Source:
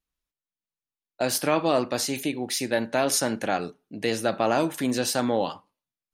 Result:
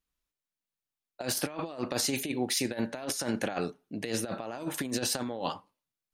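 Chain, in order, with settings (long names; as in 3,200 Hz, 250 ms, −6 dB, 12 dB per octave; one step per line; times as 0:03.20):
compressor whose output falls as the input rises −28 dBFS, ratio −0.5
level −3.5 dB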